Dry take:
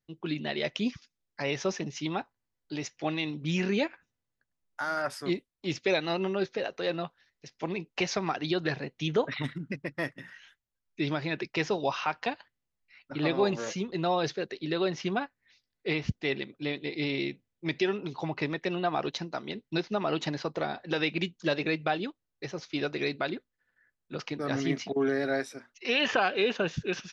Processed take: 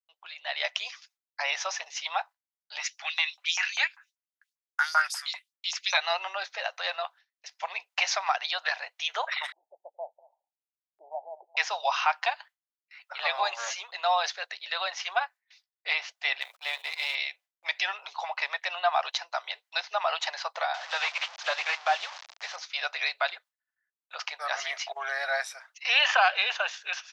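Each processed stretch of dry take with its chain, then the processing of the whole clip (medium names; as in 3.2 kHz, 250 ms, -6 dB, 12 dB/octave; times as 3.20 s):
2.79–5.97 s: tone controls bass -13 dB, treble +1 dB + LFO high-pass saw up 5.1 Hz 840–6600 Hz
9.52–11.57 s: steep low-pass 870 Hz 96 dB/octave + delay 222 ms -23 dB
16.41–17.15 s: companding laws mixed up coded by A + gate -54 dBFS, range -24 dB + decay stretcher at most 110 dB/s
20.74–22.56 s: one-bit delta coder 32 kbps, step -37 dBFS + loudspeaker Doppler distortion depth 0.13 ms
whole clip: gate with hold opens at -52 dBFS; steep high-pass 670 Hz 48 dB/octave; level rider gain up to 9.5 dB; trim -3.5 dB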